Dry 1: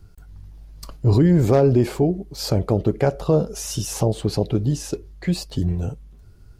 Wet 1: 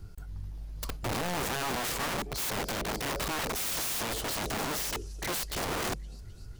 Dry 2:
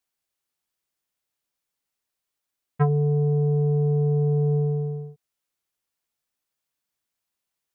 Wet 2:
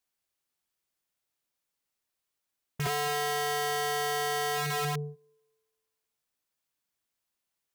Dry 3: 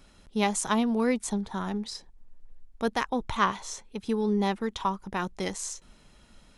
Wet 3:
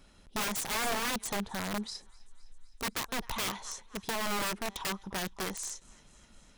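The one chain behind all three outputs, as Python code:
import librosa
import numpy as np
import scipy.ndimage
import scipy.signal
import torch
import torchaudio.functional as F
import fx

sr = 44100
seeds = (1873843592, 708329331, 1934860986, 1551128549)

y = fx.echo_thinned(x, sr, ms=257, feedback_pct=73, hz=1000.0, wet_db=-23.5)
y = fx.over_compress(y, sr, threshold_db=-23.0, ratio=-1.0)
y = (np.mod(10.0 ** (24.5 / 20.0) * y + 1.0, 2.0) - 1.0) / 10.0 ** (24.5 / 20.0)
y = y * librosa.db_to_amplitude(-3.0)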